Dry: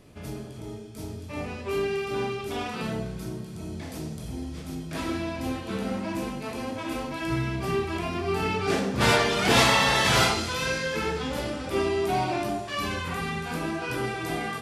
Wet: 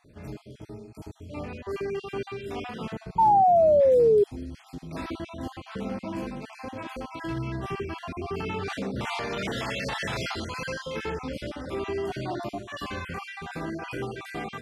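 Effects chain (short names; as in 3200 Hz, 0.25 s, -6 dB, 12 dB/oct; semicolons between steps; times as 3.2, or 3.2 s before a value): random spectral dropouts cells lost 34%; high shelf 6000 Hz -10.5 dB; limiter -20.5 dBFS, peak gain reduction 10.5 dB; painted sound fall, 3.18–4.24, 400–920 Hz -16 dBFS; gain -2 dB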